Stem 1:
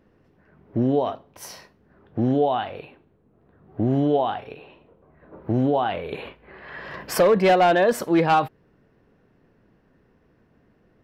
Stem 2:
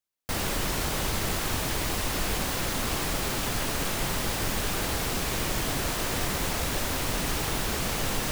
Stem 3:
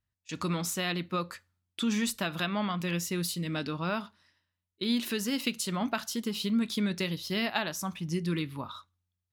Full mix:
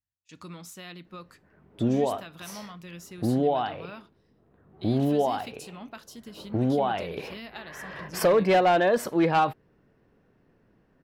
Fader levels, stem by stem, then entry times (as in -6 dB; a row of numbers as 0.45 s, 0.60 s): -3.5 dB, mute, -11.5 dB; 1.05 s, mute, 0.00 s